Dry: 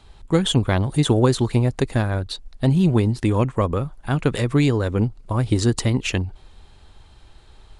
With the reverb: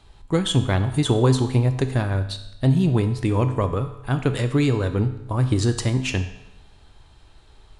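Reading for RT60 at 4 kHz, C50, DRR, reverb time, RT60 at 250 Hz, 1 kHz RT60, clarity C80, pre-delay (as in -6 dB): 0.85 s, 10.5 dB, 7.5 dB, 0.95 s, 0.95 s, 0.95 s, 13.0 dB, 3 ms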